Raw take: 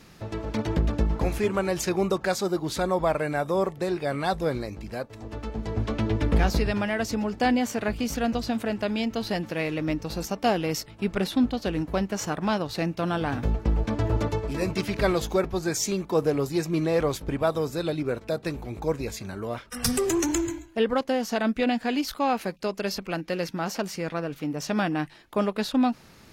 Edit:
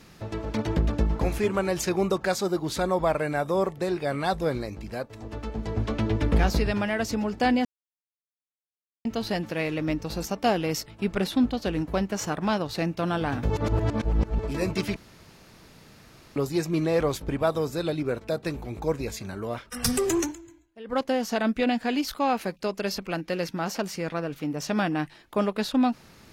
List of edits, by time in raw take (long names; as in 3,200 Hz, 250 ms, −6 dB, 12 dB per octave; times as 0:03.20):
0:07.65–0:09.05: silence
0:13.50–0:14.39: reverse
0:14.96–0:16.36: fill with room tone
0:20.20–0:20.99: duck −19.5 dB, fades 0.15 s